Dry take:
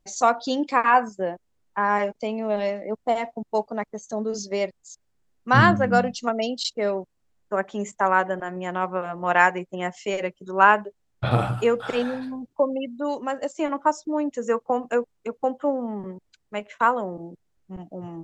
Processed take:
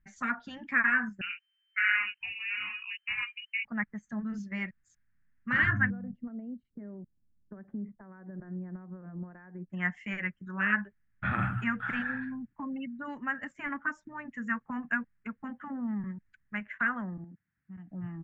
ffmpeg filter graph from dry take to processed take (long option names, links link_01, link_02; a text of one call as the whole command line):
ffmpeg -i in.wav -filter_complex "[0:a]asettb=1/sr,asplit=3[link_01][link_02][link_03];[link_01]atrim=end=1.214[link_04];[link_02]atrim=start=1.21:end=3.65,asetpts=PTS-STARTPTS,afade=type=in:duration=0.004:curve=qsin,afade=type=out:start_time=2.436:duration=0.004:curve=qsin,lowshelf=frequency=250:gain=7,flanger=delay=16:depth=5.5:speed=1.9,lowpass=frequency=2600:width_type=q:width=0.5098,lowpass=frequency=2600:width_type=q:width=0.6013,lowpass=frequency=2600:width_type=q:width=0.9,lowpass=frequency=2600:width_type=q:width=2.563,afreqshift=-3100[link_05];[link_03]atrim=start=3.646[link_06];[link_04][link_05]acrossfade=duration=0.004:curve1=hsin:curve2=qsin[link_07];[link_07][link_06]acrossfade=duration=0.004:curve1=qsin:curve2=hsin,asettb=1/sr,asplit=3[link_08][link_09][link_10];[link_08]atrim=end=5.904[link_11];[link_09]atrim=start=5.9:end=9.7,asetpts=PTS-STARTPTS,afade=type=in:duration=0.004:curve=qsin,afade=type=out:start_time=3.796:duration=0.004:curve=qsin,acompressor=threshold=-31dB:ratio=8:attack=3.2:release=140:knee=1:detection=peak,lowpass=frequency=440:width_type=q:width=2.5[link_12];[link_10]atrim=start=9.696[link_13];[link_11][link_12]acrossfade=duration=0.004:curve1=hsin:curve2=qsin[link_14];[link_14][link_13]acrossfade=duration=0.004:curve1=qsin:curve2=hsin,asettb=1/sr,asplit=3[link_15][link_16][link_17];[link_15]atrim=end=17.244[link_18];[link_16]atrim=start=17.24:end=17.88,asetpts=PTS-STARTPTS,afade=type=in:duration=0.004:curve=qsin,afade=type=out:start_time=0.636:duration=0.004:curve=qsin,highpass=110,acompressor=threshold=-44dB:ratio=2.5:attack=3.2:release=140:knee=1:detection=peak[link_19];[link_17]atrim=start=17.876[link_20];[link_18][link_19]acrossfade=duration=0.004:curve1=hsin:curve2=qsin[link_21];[link_21][link_20]acrossfade=duration=0.004:curve1=qsin:curve2=hsin,afftfilt=real='re*lt(hypot(re,im),0.501)':imag='im*lt(hypot(re,im),0.501)':win_size=1024:overlap=0.75,firequalizer=gain_entry='entry(210,0);entry(430,-24);entry(1700,8);entry(2500,-6);entry(4100,-27);entry(9000,-22)':delay=0.05:min_phase=1" out.wav